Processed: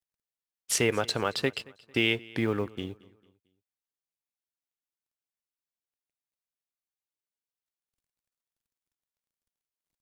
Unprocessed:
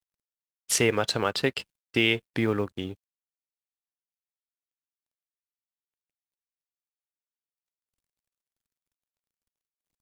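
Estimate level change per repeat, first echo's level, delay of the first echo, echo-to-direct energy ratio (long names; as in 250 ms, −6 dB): −8.0 dB, −23.0 dB, 224 ms, −22.5 dB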